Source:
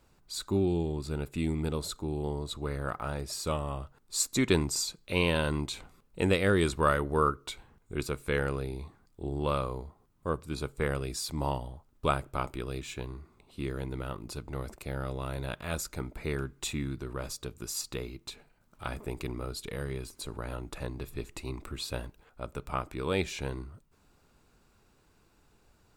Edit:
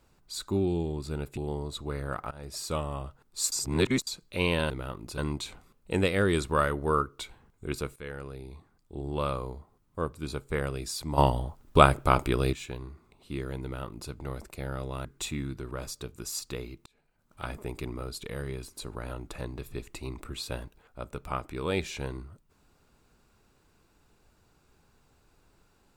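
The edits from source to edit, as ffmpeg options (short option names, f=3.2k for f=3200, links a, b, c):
-filter_complex "[0:a]asplit=12[a][b][c][d][e][f][g][h][i][j][k][l];[a]atrim=end=1.372[m];[b]atrim=start=2.128:end=3.07,asetpts=PTS-STARTPTS,afade=t=out:st=0.938:d=0.004:c=hsin:silence=0.0891251[n];[c]atrim=start=3.07:end=4.282,asetpts=PTS-STARTPTS,afade=t=in:d=0.27:silence=0.0891251[o];[d]atrim=start=4.278:end=4.832,asetpts=PTS-STARTPTS,areverse[p];[e]atrim=start=4.828:end=5.462[q];[f]atrim=start=13.908:end=14.392[r];[g]atrim=start=5.458:end=8.24,asetpts=PTS-STARTPTS,afade=t=out:st=2.778:d=0.004:c=hsin:silence=0.223872[s];[h]atrim=start=8.24:end=11.462,asetpts=PTS-STARTPTS,afade=t=in:d=1.38:silence=0.223872[t];[i]atrim=start=11.458:end=12.812,asetpts=PTS-STARTPTS,volume=10dB[u];[j]atrim=start=12.808:end=15.332[v];[k]atrim=start=16.468:end=18.28,asetpts=PTS-STARTPTS,afade=t=out:st=1.808:d=0.004:c=hsin[w];[l]atrim=start=18.28,asetpts=PTS-STARTPTS,afade=t=in:d=0.56[x];[n][o]concat=n=2:v=0:a=1[y];[m][y]acrossfade=d=0.004:c1=hsin:c2=hsin[z];[z][p]acrossfade=d=0.004:c1=hsin:c2=hsin[aa];[aa][q]acrossfade=d=0.004:c1=hsin:c2=hsin[ab];[ab][r]acrossfade=d=0.004:c1=hsin:c2=hsin[ac];[s][t]concat=n=2:v=0:a=1[ad];[ac][ad]acrossfade=d=0.004:c1=hsin:c2=hsin[ae];[ae][u]acrossfade=d=0.004:c1=hsin:c2=hsin[af];[af][v]acrossfade=d=0.004:c1=hsin:c2=hsin[ag];[w][x]concat=n=2:v=0:a=1[ah];[ag][ah]acrossfade=d=0.004:c1=hsin:c2=hsin"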